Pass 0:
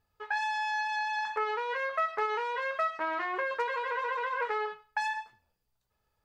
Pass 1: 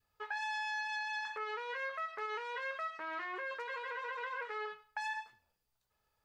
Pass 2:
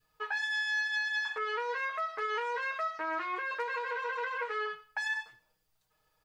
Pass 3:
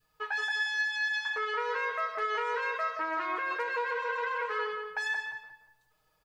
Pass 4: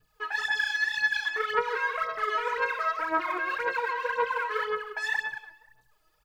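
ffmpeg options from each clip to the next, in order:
ffmpeg -i in.wav -af "lowshelf=frequency=470:gain=-6,alimiter=level_in=5dB:limit=-24dB:level=0:latency=1:release=318,volume=-5dB,adynamicequalizer=threshold=0.00224:dfrequency=810:dqfactor=1.7:tfrequency=810:tqfactor=1.7:attack=5:release=100:ratio=0.375:range=3:mode=cutabove:tftype=bell" out.wav
ffmpeg -i in.wav -af "aecho=1:1:6.4:0.9,volume=3.5dB" out.wav
ffmpeg -i in.wav -filter_complex "[0:a]asplit=2[link_01][link_02];[link_02]adelay=176,lowpass=frequency=2100:poles=1,volume=-4dB,asplit=2[link_03][link_04];[link_04]adelay=176,lowpass=frequency=2100:poles=1,volume=0.34,asplit=2[link_05][link_06];[link_06]adelay=176,lowpass=frequency=2100:poles=1,volume=0.34,asplit=2[link_07][link_08];[link_08]adelay=176,lowpass=frequency=2100:poles=1,volume=0.34[link_09];[link_01][link_03][link_05][link_07][link_09]amix=inputs=5:normalize=0,volume=1dB" out.wav
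ffmpeg -i in.wav -af "aphaser=in_gain=1:out_gain=1:delay=3.1:decay=0.68:speed=1.9:type=sinusoidal" out.wav

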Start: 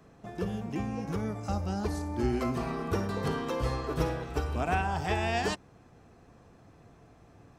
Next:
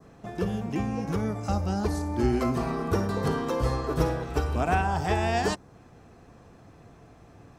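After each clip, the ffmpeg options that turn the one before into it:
ffmpeg -i in.wav -af "adynamicequalizer=threshold=0.00316:dfrequency=2700:dqfactor=1.2:tfrequency=2700:tqfactor=1.2:attack=5:release=100:ratio=0.375:range=3:mode=cutabove:tftype=bell,volume=4.5dB" out.wav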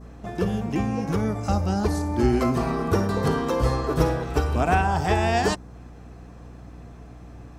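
ffmpeg -i in.wav -af "aeval=exprs='val(0)+0.00501*(sin(2*PI*60*n/s)+sin(2*PI*2*60*n/s)/2+sin(2*PI*3*60*n/s)/3+sin(2*PI*4*60*n/s)/4+sin(2*PI*5*60*n/s)/5)':channel_layout=same,volume=4dB" out.wav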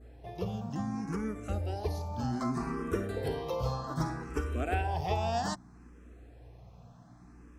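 ffmpeg -i in.wav -filter_complex "[0:a]asplit=2[link_01][link_02];[link_02]afreqshift=0.64[link_03];[link_01][link_03]amix=inputs=2:normalize=1,volume=-7.5dB" out.wav

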